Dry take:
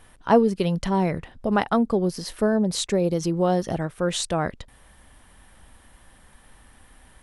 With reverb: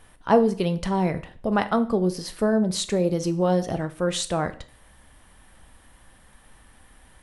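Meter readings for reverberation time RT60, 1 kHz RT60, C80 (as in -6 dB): 0.45 s, 0.45 s, 20.5 dB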